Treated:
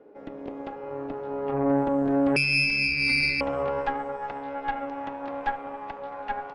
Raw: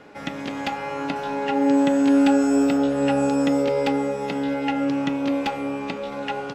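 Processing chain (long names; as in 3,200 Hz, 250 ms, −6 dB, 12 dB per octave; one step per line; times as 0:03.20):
band-pass filter sweep 420 Hz → 870 Hz, 0:02.78–0:03.87
0:02.36–0:03.41: voice inversion scrambler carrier 2,900 Hz
spring reverb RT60 1.9 s, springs 30 ms, chirp 45 ms, DRR 15.5 dB
harmonic generator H 4 −11 dB, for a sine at −14 dBFS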